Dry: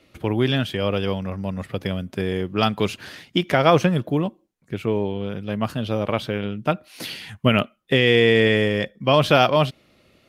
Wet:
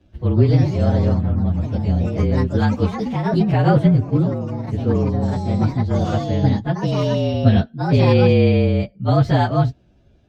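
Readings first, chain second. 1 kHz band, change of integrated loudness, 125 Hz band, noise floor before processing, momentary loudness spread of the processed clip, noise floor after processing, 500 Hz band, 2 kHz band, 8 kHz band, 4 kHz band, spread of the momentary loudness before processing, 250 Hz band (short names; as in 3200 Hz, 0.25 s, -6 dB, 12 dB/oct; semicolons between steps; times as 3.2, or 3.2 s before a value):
-0.5 dB, +3.0 dB, +10.0 dB, -60 dBFS, 7 LU, -54 dBFS, -0.5 dB, -7.0 dB, n/a, -8.5 dB, 13 LU, +5.0 dB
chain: inharmonic rescaling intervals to 112%; RIAA curve playback; echoes that change speed 0.17 s, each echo +3 st, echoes 3, each echo -6 dB; gain -2 dB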